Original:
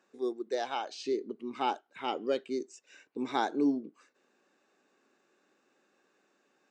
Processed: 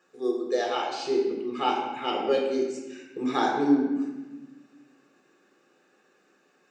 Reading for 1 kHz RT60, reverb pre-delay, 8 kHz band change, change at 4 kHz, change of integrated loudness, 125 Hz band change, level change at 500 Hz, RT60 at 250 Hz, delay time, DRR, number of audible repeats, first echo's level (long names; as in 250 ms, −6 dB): 1.1 s, 6 ms, +5.5 dB, +7.0 dB, +6.5 dB, +9.5 dB, +7.5 dB, 1.9 s, no echo audible, −1.5 dB, no echo audible, no echo audible